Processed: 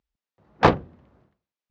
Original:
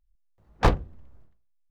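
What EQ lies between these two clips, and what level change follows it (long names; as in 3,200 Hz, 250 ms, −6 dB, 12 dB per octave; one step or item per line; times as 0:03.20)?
band-pass filter 150–7,300 Hz
high-frequency loss of the air 100 metres
+7.0 dB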